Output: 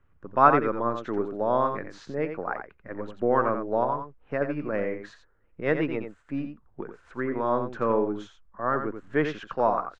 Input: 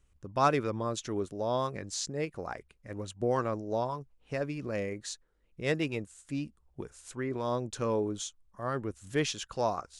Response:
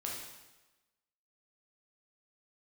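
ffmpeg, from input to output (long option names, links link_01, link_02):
-filter_complex "[0:a]lowpass=frequency=1500:width_type=q:width=1.8,acrossover=split=130[link_01][link_02];[link_01]aeval=exprs='abs(val(0))':channel_layout=same[link_03];[link_03][link_02]amix=inputs=2:normalize=0,aecho=1:1:87:0.398,volume=4.5dB"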